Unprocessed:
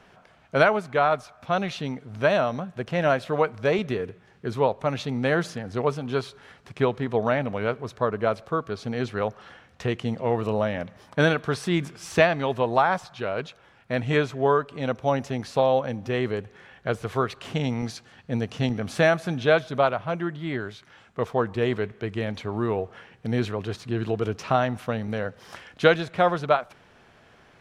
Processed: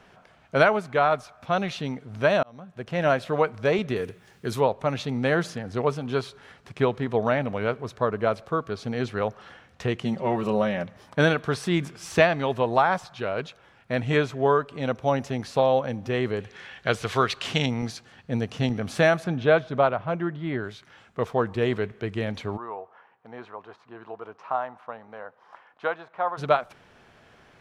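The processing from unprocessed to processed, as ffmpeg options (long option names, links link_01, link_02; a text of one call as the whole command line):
ffmpeg -i in.wav -filter_complex "[0:a]asettb=1/sr,asplit=3[link_01][link_02][link_03];[link_01]atrim=end=3.964[link_04];[link_02]atrim=start=3.96:end=4.61,asetpts=PTS-STARTPTS,afade=type=in:duration=0.004:curve=qsin,afade=type=out:start_time=0.646:duration=0.004:curve=qsin,aemphasis=mode=production:type=75kf[link_05];[link_03]atrim=start=4.606[link_06];[link_04][link_05]acrossfade=duration=0.004:curve1=hsin:curve2=qsin[link_07];[link_07][link_06]acrossfade=duration=0.004:curve1=qsin:curve2=hsin,asettb=1/sr,asplit=3[link_08][link_09][link_10];[link_08]atrim=end=10.034[link_11];[link_09]atrim=start=10.03:end=10.85,asetpts=PTS-STARTPTS,afade=type=in:duration=0.004:curve=qsin,afade=type=out:start_time=0.816:duration=0.004:curve=qsin,aecho=1:1:5.3:0.65,atrim=end_sample=36162[link_12];[link_10]atrim=start=10.846[link_13];[link_11][link_12]acrossfade=duration=0.004:curve1=hsin:curve2=qsin[link_14];[link_14][link_13]acrossfade=duration=0.004:curve1=qsin:curve2=hsin,asettb=1/sr,asplit=3[link_15][link_16][link_17];[link_15]atrim=end=16.404[link_18];[link_16]atrim=start=16.4:end=17.66,asetpts=PTS-STARTPTS,afade=type=in:duration=0.004:curve=qsin,afade=type=out:start_time=1.256:duration=0.004:curve=qsin,equalizer=frequency=4100:width_type=o:width=2.9:gain=10.5[link_19];[link_17]atrim=start=17.656[link_20];[link_18][link_19]acrossfade=duration=0.004:curve1=hsin:curve2=qsin[link_21];[link_21][link_20]acrossfade=duration=0.004:curve1=qsin:curve2=hsin,asettb=1/sr,asplit=3[link_22][link_23][link_24];[link_22]atrim=end=19.244[link_25];[link_23]atrim=start=19.24:end=20.64,asetpts=PTS-STARTPTS,afade=type=in:duration=0.004:curve=qsin,afade=type=out:start_time=1.396:duration=0.004:curve=qsin,aemphasis=mode=reproduction:type=75fm[link_26];[link_24]atrim=start=20.636[link_27];[link_25][link_26]acrossfade=duration=0.004:curve1=hsin:curve2=qsin[link_28];[link_28][link_27]acrossfade=duration=0.004:curve1=qsin:curve2=hsin,asplit=3[link_29][link_30][link_31];[link_29]afade=type=out:start_time=22.56:duration=0.02[link_32];[link_30]bandpass=frequency=960:width_type=q:width=2.5,afade=type=in:start_time=22.56:duration=0.02,afade=type=out:start_time=26.37:duration=0.02[link_33];[link_31]afade=type=in:start_time=26.37:duration=0.02[link_34];[link_32][link_33][link_34]amix=inputs=3:normalize=0,asplit=2[link_35][link_36];[link_35]atrim=end=2.43,asetpts=PTS-STARTPTS,afade=type=out:start_time=2.426:duration=0.004:curve=hsin[link_37];[link_36]atrim=start=2.43,asetpts=PTS-STARTPTS,afade=type=in:duration=0.65[link_38];[link_37][link_38]concat=n=2:v=0:a=1" out.wav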